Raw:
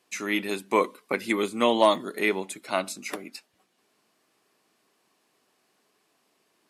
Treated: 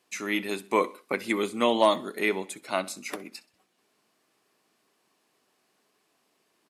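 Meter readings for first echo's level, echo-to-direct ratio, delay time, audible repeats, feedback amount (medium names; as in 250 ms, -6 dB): -21.0 dB, -20.0 dB, 64 ms, 2, 44%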